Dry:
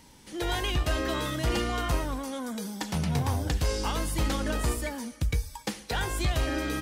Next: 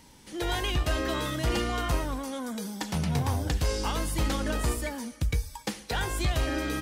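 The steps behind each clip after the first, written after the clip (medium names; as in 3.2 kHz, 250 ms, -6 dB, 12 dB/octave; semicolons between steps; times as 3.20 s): no audible change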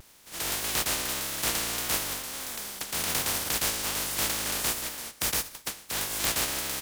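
spectral contrast reduction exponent 0.15; vibrato 1.7 Hz 75 cents; trim -1.5 dB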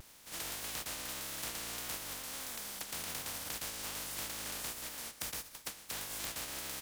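band-stop 380 Hz, Q 12; compression 4:1, threshold -38 dBFS, peak gain reduction 12.5 dB; trim -2 dB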